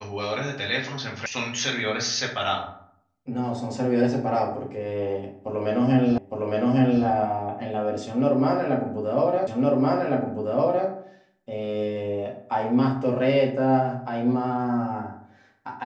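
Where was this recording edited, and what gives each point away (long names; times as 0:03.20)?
0:01.26: cut off before it has died away
0:06.18: the same again, the last 0.86 s
0:09.47: the same again, the last 1.41 s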